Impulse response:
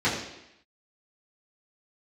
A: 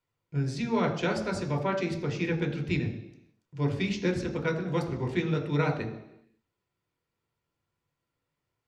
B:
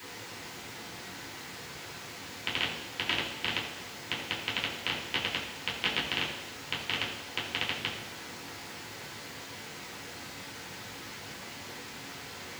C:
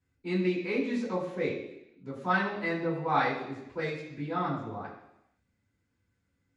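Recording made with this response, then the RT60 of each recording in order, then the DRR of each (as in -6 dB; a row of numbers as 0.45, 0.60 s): C; 0.85, 0.85, 0.85 s; 2.5, -6.5, -11.0 dB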